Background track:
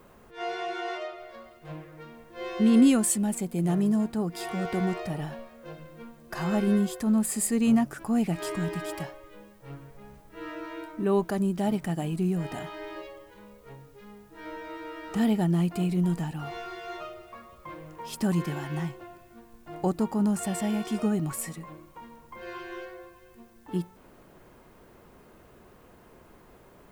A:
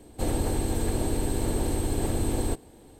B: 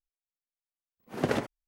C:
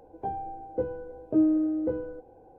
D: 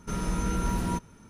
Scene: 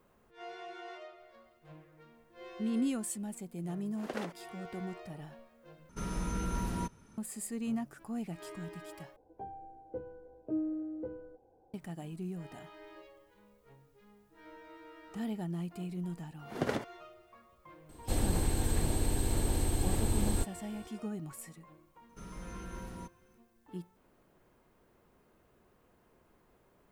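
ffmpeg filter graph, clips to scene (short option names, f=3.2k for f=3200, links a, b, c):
-filter_complex "[2:a]asplit=2[a][b];[4:a]asplit=2[c][d];[0:a]volume=-13dB[e];[a]highpass=380[f];[b]bandreject=f=2.6k:w=18[g];[1:a]equalizer=f=420:w=0.53:g=-6[h];[e]asplit=3[i][j][k];[i]atrim=end=5.894[l];[c]atrim=end=1.29,asetpts=PTS-STARTPTS,volume=-6.5dB[m];[j]atrim=start=7.176:end=9.164[n];[3:a]atrim=end=2.58,asetpts=PTS-STARTPTS,volume=-12dB[o];[k]atrim=start=11.736[p];[f]atrim=end=1.67,asetpts=PTS-STARTPTS,volume=-9dB,afade=t=in:d=0.004:c=hsin,afade=t=out:st=1.666:d=0.004:c=hsin,adelay=2860[q];[g]atrim=end=1.67,asetpts=PTS-STARTPTS,volume=-5dB,afade=t=in:d=0.004:c=hsin,afade=t=out:st=1.666:d=0.004:c=hsin,adelay=15380[r];[h]atrim=end=2.99,asetpts=PTS-STARTPTS,volume=-2dB,afade=t=in:d=0.004:c=hsin,afade=t=out:st=2.986:d=0.004:c=hsin,adelay=17890[s];[d]atrim=end=1.29,asetpts=PTS-STARTPTS,volume=-16.5dB,afade=t=in:d=0.004:c=hsin,afade=t=out:st=1.286:d=0.004:c=hsin,adelay=22090[t];[l][m]acrossfade=d=0.004:c1=hsin:c2=hsin[u];[u][n]acrossfade=d=0.004:c1=hsin:c2=hsin[v];[v][o]acrossfade=d=0.004:c1=hsin:c2=hsin[w];[w][p]acrossfade=d=0.004:c1=hsin:c2=hsin[x];[x][q][r][s][t]amix=inputs=5:normalize=0"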